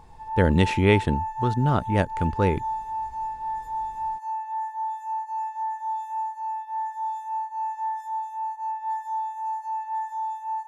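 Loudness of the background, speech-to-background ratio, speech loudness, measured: -30.5 LUFS, 7.0 dB, -23.5 LUFS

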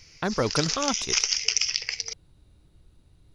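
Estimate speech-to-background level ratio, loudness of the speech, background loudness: -3.5 dB, -29.0 LUFS, -25.5 LUFS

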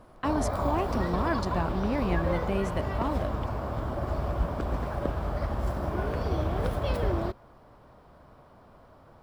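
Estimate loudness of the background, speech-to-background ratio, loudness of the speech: -31.0 LUFS, -1.0 dB, -32.0 LUFS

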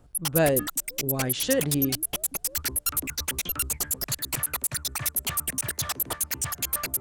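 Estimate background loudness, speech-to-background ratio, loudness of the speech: -27.5 LUFS, 0.0 dB, -27.5 LUFS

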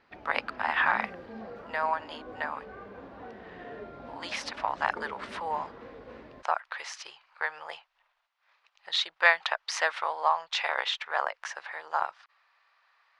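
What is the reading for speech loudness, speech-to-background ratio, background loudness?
-30.0 LUFS, 15.5 dB, -45.5 LUFS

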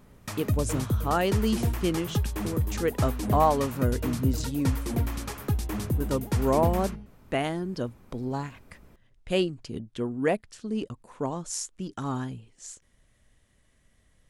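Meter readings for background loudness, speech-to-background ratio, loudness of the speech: -30.5 LUFS, 0.5 dB, -30.0 LUFS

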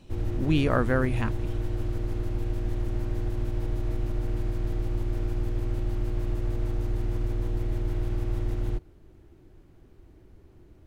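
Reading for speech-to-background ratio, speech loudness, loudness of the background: 5.0 dB, -27.0 LUFS, -32.0 LUFS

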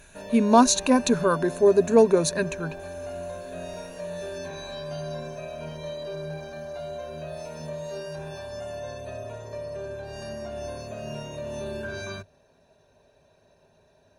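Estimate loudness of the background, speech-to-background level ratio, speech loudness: -36.0 LUFS, 15.5 dB, -20.5 LUFS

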